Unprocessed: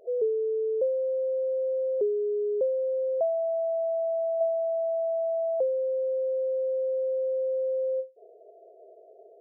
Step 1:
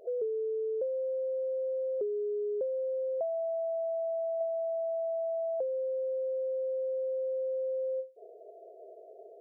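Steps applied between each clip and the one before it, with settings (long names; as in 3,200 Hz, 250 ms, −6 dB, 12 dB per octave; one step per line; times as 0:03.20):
downward compressor 2.5 to 1, threshold −36 dBFS, peak gain reduction 9 dB
level +1.5 dB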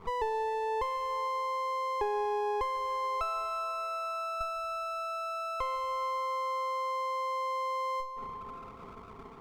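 lower of the sound and its delayed copy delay 0.83 ms
convolution reverb RT60 3.3 s, pre-delay 113 ms, DRR 11.5 dB
level +5.5 dB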